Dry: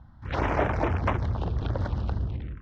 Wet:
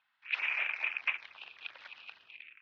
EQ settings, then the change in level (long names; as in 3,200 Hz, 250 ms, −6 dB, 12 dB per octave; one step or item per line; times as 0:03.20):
high-pass with resonance 2,500 Hz, resonance Q 11
high-frequency loss of the air 180 metres
−3.0 dB